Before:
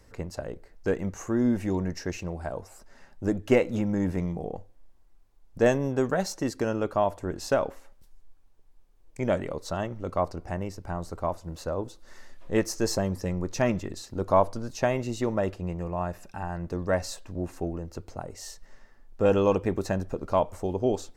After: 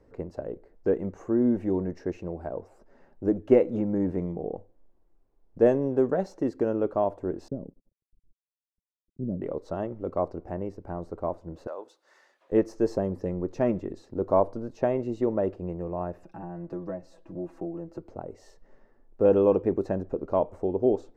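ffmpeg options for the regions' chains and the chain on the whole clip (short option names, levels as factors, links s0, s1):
-filter_complex "[0:a]asettb=1/sr,asplit=3[s0][s1][s2];[s0]atrim=end=7.484[s3];[s1]atrim=start=7.48:end=9.42,asetpts=PTS-STARTPTS,afade=t=in:d=0.004:c=qsin,afade=t=out:st=1.936:d=0.004:c=qsin,aeval=exprs='sgn(val(0))*max(abs(val(0))-0.00501,0)':c=same,lowpass=f=190:t=q:w=1.7[s4];[s2]atrim=start=9.416[s5];[s3][s4]acrossfade=d=0.004:c1=hsin:c2=qsin[s6];[s6][s5]acrossfade=d=0.004:c1=qsin:c2=hsin,asettb=1/sr,asplit=3[s7][s8][s9];[s7]atrim=end=11.674[s10];[s8]atrim=start=11.67:end=12.52,asetpts=PTS-STARTPTS,afade=t=in:d=0.004:c=qsin,afade=t=out:st=0.846:d=0.004:c=qsin,highpass=830,highshelf=f=2100:g=8.5[s11];[s9]atrim=start=12.516[s12];[s10][s11]acrossfade=d=0.004:c1=hsin:c2=qsin[s13];[s13][s12]acrossfade=d=0.004:c1=qsin:c2=hsin,asettb=1/sr,asplit=3[s14][s15][s16];[s14]atrim=end=16.234[s17];[s15]atrim=start=16.23:end=18.09,asetpts=PTS-STARTPTS,afade=t=in:d=0.004:c=qsin,afade=t=out:st=1.856:d=0.004:c=qsin,bandreject=f=460:w=6.5,aecho=1:1:6.1:0.77,atrim=end_sample=82026,acrossover=split=82|480[s18][s19][s20];[s18]acompressor=threshold=0.00355:ratio=4[s21];[s19]acompressor=threshold=0.0158:ratio=4[s22];[s20]acompressor=threshold=0.00891:ratio=4[s23];[s21][s22][s23]amix=inputs=3:normalize=0[s24];[s16]atrim=start=18.086[s25];[s17][s24]acrossfade=d=0.004:c1=hsin:c2=qsin[s26];[s26][s25]acrossfade=d=0.004:c1=qsin:c2=hsin,lowpass=f=1400:p=1,equalizer=f=390:w=0.66:g=11,volume=0.447"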